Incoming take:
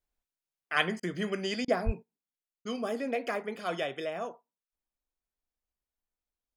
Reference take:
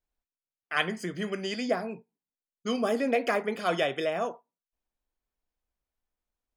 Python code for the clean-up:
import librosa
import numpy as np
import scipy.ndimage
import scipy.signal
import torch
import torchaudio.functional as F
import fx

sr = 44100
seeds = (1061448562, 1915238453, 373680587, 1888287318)

y = fx.highpass(x, sr, hz=140.0, slope=24, at=(1.85, 1.97), fade=0.02)
y = fx.fix_interpolate(y, sr, at_s=(1.0, 1.65, 2.62), length_ms=29.0)
y = fx.gain(y, sr, db=fx.steps((0.0, 0.0), (2.03, 6.0)))